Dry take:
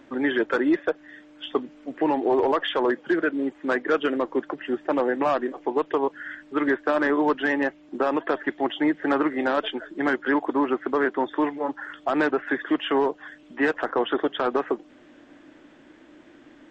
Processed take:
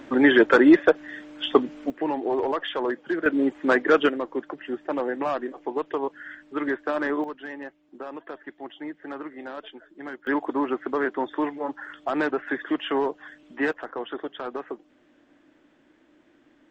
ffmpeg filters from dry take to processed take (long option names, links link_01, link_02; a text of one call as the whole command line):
ffmpeg -i in.wav -af "asetnsamples=nb_out_samples=441:pad=0,asendcmd='1.9 volume volume -4dB;3.26 volume volume 4dB;4.09 volume volume -4dB;7.24 volume volume -13.5dB;10.27 volume volume -2.5dB;13.73 volume volume -9dB',volume=7dB" out.wav